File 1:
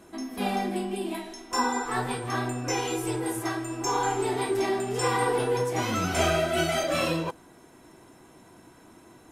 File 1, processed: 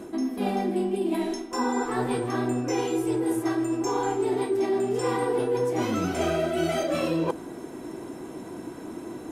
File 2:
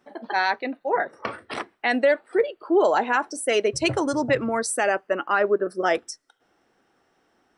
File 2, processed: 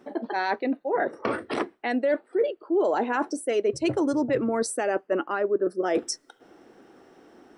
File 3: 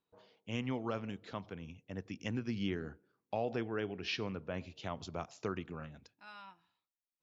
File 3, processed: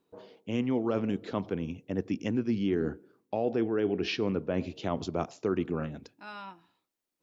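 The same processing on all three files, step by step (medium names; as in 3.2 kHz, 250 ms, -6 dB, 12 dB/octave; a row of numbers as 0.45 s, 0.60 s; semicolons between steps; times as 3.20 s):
peaking EQ 330 Hz +11 dB 1.9 oct; reverse; compression 4:1, threshold -32 dBFS; reverse; trim +6.5 dB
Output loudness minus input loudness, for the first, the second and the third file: +1.0 LU, -3.0 LU, +9.0 LU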